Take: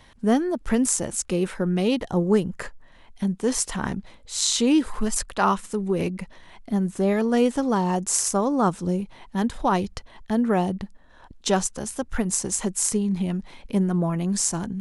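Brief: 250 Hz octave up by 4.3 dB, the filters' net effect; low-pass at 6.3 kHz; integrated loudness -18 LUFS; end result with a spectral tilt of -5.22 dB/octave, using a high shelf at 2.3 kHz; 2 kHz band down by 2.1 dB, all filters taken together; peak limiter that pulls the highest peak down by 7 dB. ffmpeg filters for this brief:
-af "lowpass=6300,equalizer=f=250:t=o:g=5.5,equalizer=f=2000:t=o:g=-5.5,highshelf=f=2300:g=5,volume=1.68,alimiter=limit=0.473:level=0:latency=1"

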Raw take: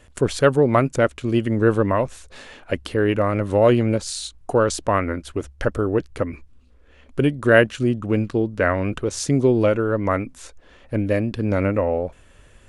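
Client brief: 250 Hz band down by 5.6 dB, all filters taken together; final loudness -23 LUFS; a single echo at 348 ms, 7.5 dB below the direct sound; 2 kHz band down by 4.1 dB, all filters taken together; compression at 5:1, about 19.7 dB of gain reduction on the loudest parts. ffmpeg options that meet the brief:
-af "equalizer=f=250:t=o:g=-7.5,equalizer=f=2000:t=o:g=-5.5,acompressor=threshold=0.0178:ratio=5,aecho=1:1:348:0.422,volume=5.62"

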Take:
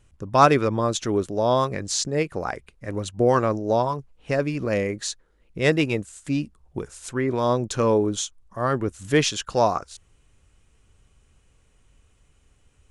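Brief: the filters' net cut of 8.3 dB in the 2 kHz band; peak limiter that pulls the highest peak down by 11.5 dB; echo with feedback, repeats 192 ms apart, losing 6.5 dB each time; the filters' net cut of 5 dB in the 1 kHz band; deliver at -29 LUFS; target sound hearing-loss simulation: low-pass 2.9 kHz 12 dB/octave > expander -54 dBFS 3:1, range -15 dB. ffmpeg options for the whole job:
-af "equalizer=f=1000:t=o:g=-4.5,equalizer=f=2000:t=o:g=-8,alimiter=limit=0.15:level=0:latency=1,lowpass=2900,aecho=1:1:192|384|576|768|960|1152:0.473|0.222|0.105|0.0491|0.0231|0.0109,agate=range=0.178:threshold=0.002:ratio=3,volume=0.891"

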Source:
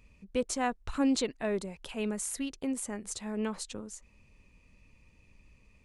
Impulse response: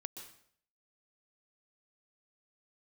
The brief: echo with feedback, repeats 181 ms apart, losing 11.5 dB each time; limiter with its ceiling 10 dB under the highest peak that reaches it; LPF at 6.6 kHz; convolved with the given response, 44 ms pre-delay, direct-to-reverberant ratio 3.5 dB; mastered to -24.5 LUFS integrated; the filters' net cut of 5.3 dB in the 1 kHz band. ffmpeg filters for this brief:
-filter_complex "[0:a]lowpass=6600,equalizer=f=1000:t=o:g=-8,alimiter=level_in=1.68:limit=0.0631:level=0:latency=1,volume=0.596,aecho=1:1:181|362|543:0.266|0.0718|0.0194,asplit=2[s0][s1];[1:a]atrim=start_sample=2205,adelay=44[s2];[s1][s2]afir=irnorm=-1:irlink=0,volume=0.944[s3];[s0][s3]amix=inputs=2:normalize=0,volume=4.47"

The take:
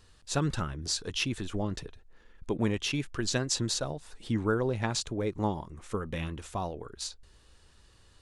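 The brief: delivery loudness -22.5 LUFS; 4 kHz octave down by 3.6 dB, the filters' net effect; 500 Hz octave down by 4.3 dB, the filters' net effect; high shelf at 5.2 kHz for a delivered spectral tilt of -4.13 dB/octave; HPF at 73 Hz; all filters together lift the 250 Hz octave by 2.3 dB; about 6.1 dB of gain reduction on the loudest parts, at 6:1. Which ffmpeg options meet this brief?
-af "highpass=73,equalizer=f=250:t=o:g=5,equalizer=f=500:t=o:g=-7.5,equalizer=f=4000:t=o:g=-8,highshelf=f=5200:g=6.5,acompressor=threshold=0.0355:ratio=6,volume=4.47"

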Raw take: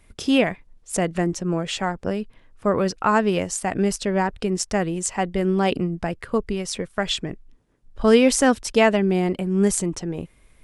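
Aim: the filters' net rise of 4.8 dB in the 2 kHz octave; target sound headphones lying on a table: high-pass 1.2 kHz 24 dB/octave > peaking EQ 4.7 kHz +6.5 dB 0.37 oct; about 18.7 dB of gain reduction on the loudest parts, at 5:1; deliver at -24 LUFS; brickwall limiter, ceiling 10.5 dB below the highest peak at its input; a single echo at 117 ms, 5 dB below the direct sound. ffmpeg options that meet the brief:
-af "equalizer=f=2000:t=o:g=6,acompressor=threshold=0.0251:ratio=5,alimiter=level_in=1.33:limit=0.0631:level=0:latency=1,volume=0.75,highpass=f=1200:w=0.5412,highpass=f=1200:w=1.3066,equalizer=f=4700:t=o:w=0.37:g=6.5,aecho=1:1:117:0.562,volume=6.31"

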